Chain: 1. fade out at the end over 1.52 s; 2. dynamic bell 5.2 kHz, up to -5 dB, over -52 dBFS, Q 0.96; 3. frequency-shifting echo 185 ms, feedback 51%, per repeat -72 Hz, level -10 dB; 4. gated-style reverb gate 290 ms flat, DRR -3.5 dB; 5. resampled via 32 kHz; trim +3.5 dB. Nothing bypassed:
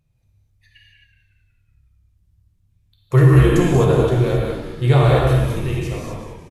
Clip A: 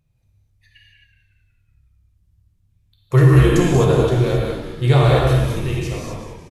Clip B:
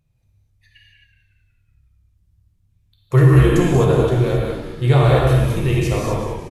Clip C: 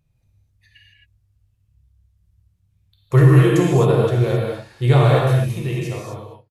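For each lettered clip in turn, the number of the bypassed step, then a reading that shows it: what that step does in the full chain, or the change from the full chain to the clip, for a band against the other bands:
2, 8 kHz band +3.0 dB; 1, momentary loudness spread change -4 LU; 3, momentary loudness spread change +1 LU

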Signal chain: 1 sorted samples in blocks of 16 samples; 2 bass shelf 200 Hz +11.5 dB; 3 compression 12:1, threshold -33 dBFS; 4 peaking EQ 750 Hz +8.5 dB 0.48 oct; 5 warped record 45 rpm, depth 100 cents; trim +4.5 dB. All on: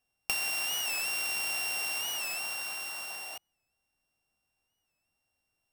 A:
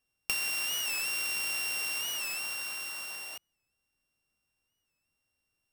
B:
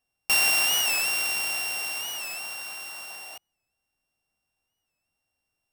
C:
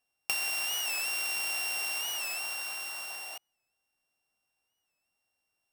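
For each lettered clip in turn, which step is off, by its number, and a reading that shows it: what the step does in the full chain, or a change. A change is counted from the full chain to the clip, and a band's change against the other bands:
4, 1 kHz band -3.5 dB; 3, mean gain reduction 3.5 dB; 2, 250 Hz band -4.0 dB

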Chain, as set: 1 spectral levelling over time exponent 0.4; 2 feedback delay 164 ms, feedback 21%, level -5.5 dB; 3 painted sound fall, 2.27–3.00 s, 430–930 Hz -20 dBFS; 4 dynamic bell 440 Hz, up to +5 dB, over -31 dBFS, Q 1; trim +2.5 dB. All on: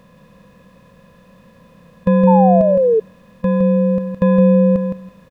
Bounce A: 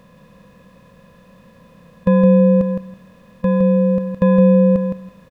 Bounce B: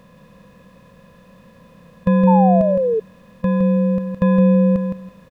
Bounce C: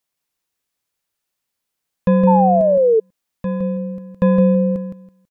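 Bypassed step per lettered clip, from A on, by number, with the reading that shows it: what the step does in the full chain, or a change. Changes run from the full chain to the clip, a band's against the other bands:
3, 1 kHz band -10.5 dB; 4, 500 Hz band -3.0 dB; 1, 1 kHz band +3.0 dB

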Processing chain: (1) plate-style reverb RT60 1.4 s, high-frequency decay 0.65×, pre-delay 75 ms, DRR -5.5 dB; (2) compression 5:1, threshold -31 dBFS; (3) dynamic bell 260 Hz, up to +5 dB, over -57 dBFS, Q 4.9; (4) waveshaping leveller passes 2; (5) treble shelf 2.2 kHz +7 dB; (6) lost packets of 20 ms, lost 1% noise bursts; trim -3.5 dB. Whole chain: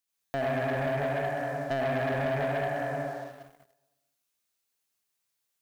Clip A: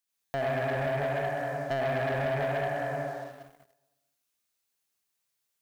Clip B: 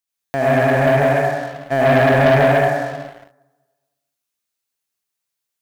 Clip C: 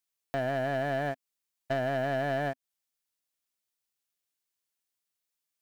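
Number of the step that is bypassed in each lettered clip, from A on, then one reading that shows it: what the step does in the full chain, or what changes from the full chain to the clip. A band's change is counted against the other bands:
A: 3, 250 Hz band -3.0 dB; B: 2, mean gain reduction 10.5 dB; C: 1, crest factor change +2.5 dB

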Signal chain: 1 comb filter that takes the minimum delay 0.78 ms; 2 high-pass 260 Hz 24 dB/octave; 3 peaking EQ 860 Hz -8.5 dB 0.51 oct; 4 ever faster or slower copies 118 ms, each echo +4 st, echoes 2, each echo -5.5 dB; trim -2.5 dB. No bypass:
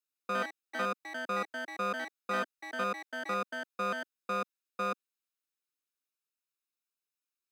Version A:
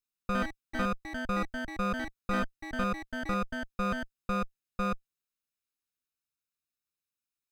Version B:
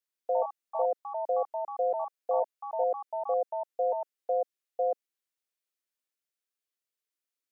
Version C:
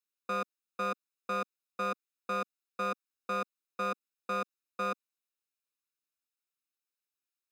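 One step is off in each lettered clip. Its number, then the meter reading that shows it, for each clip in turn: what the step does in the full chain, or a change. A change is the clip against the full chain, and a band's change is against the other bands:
2, 250 Hz band +10.0 dB; 1, crest factor change -1.5 dB; 4, loudness change -1.0 LU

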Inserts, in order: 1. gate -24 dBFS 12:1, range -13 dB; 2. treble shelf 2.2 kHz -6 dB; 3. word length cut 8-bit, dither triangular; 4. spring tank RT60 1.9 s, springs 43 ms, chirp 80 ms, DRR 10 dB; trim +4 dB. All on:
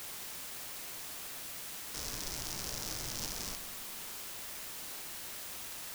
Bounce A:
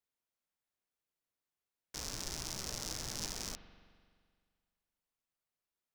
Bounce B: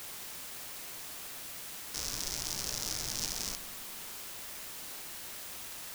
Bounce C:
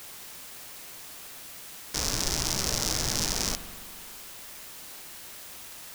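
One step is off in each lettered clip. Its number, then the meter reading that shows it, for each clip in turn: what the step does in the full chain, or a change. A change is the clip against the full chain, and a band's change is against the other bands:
3, crest factor change +4.5 dB; 2, 8 kHz band +3.0 dB; 1, momentary loudness spread change +11 LU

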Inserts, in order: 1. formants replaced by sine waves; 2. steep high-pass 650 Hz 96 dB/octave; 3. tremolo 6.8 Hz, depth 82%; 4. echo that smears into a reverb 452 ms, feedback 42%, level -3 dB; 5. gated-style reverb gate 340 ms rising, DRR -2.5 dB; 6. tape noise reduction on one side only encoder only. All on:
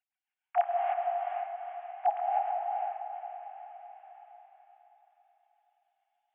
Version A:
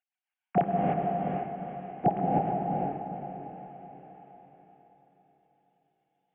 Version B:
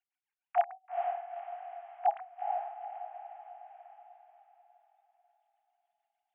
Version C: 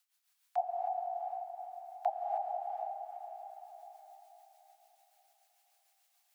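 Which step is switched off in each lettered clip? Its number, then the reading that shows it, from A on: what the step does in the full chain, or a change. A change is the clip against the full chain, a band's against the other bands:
2, loudness change +2.5 LU; 5, momentary loudness spread change +1 LU; 1, crest factor change +1.5 dB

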